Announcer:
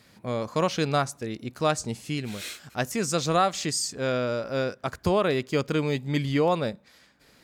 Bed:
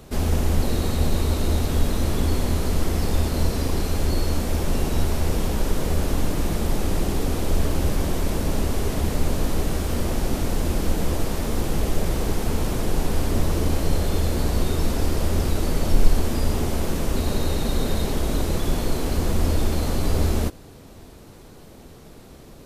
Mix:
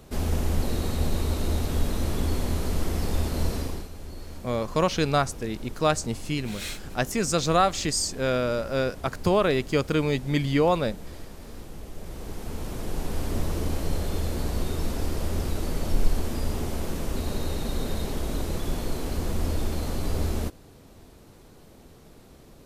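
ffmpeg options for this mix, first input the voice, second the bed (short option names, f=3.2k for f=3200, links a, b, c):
-filter_complex "[0:a]adelay=4200,volume=1.5dB[a];[1:a]volume=7dB,afade=t=out:st=3.54:d=0.35:silence=0.223872,afade=t=in:st=11.93:d=1.4:silence=0.266073[b];[a][b]amix=inputs=2:normalize=0"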